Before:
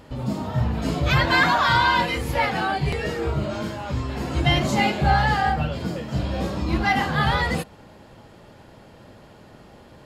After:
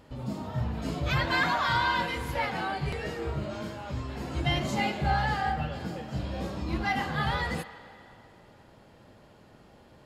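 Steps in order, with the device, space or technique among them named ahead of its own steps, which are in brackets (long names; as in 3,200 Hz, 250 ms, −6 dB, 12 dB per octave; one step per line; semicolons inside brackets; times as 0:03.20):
filtered reverb send (on a send: high-pass filter 500 Hz 12 dB per octave + low-pass filter 4,100 Hz + convolution reverb RT60 2.7 s, pre-delay 80 ms, DRR 12.5 dB)
on the sum: level −8 dB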